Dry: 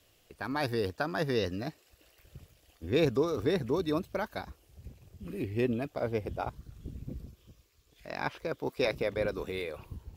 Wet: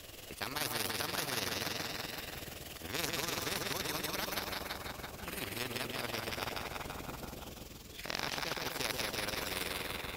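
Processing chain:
echo with a time of its own for lows and highs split 770 Hz, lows 124 ms, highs 167 ms, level −4 dB
amplitude modulation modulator 21 Hz, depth 45%
every bin compressed towards the loudest bin 4 to 1

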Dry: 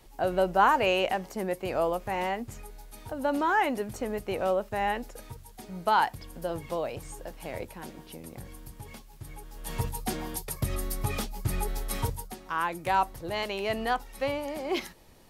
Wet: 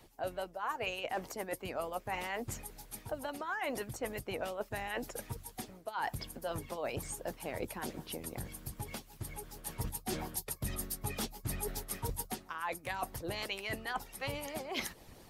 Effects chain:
harmonic and percussive parts rebalanced harmonic −16 dB
reversed playback
downward compressor 12 to 1, threshold −40 dBFS, peak gain reduction 21 dB
reversed playback
level +6 dB

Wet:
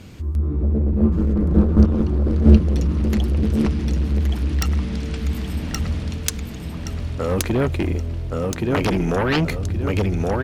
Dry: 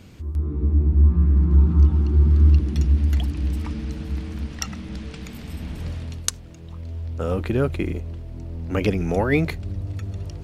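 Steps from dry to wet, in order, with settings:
repeating echo 1,123 ms, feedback 34%, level −3.5 dB
harmonic generator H 7 −7 dB, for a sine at −1.5 dBFS
level −1.5 dB

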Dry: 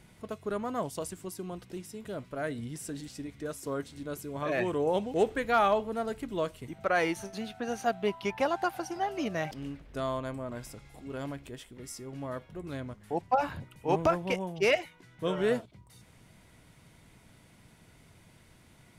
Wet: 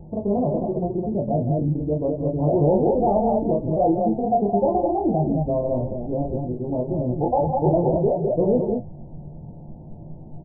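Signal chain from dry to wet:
in parallel at +1 dB: downward compressor 6 to 1, threshold −40 dBFS, peak gain reduction 18 dB
on the sum: multi-tap delay 40/190/295/371/384 ms −5.5/−19.5/−12/−8.5/−6.5 dB
on a send at −3 dB: convolution reverb, pre-delay 6 ms
on the sum: soft clipping −19 dBFS, distortion −14 dB
Butterworth low-pass 860 Hz 72 dB per octave
low-shelf EQ 140 Hz +6.5 dB
phase-vocoder stretch with locked phases 0.55×
level +7.5 dB

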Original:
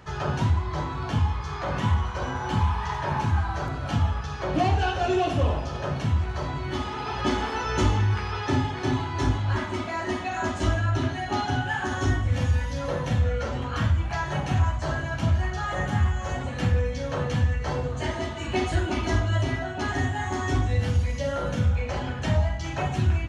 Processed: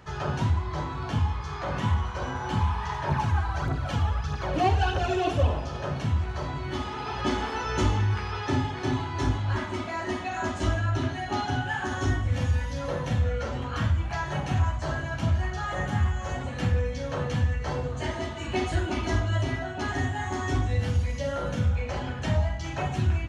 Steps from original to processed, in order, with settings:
0:03.09–0:05.47: phase shifter 1.6 Hz, delay 2.8 ms, feedback 50%
level −2 dB

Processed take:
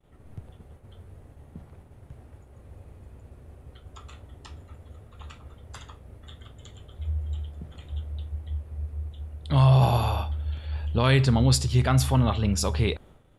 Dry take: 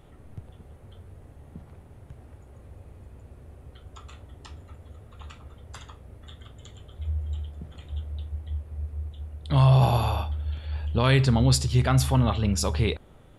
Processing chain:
downward expander −45 dBFS

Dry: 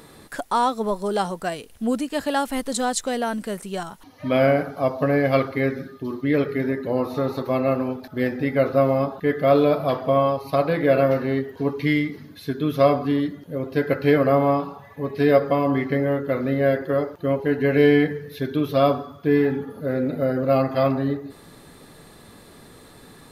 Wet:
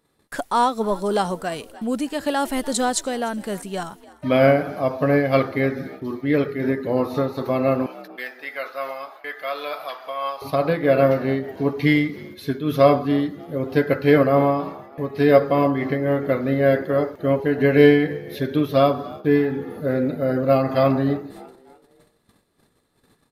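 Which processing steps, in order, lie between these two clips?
0:07.86–0:10.42: high-pass filter 1,200 Hz 12 dB per octave
noise gate −43 dBFS, range −23 dB
echo with shifted repeats 296 ms, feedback 44%, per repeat +61 Hz, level −22 dB
amplitude modulation by smooth noise, depth 65%
level +5 dB

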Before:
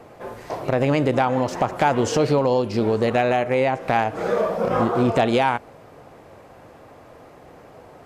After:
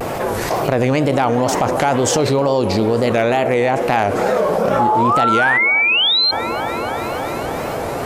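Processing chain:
high-shelf EQ 6,400 Hz +9.5 dB
sound drawn into the spectrogram rise, 0:04.79–0:06.32, 780–4,300 Hz −16 dBFS
tape wow and flutter 130 cents
delay with a band-pass on its return 289 ms, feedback 66%, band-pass 550 Hz, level −13 dB
envelope flattener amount 70%
level −1 dB

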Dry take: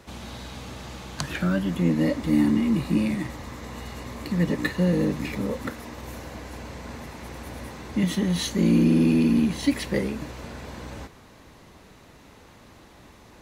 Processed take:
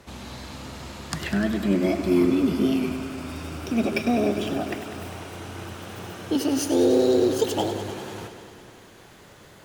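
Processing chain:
gliding playback speed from 102% → 176%
feedback echo with a swinging delay time 100 ms, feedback 77%, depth 58 cents, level −11 dB

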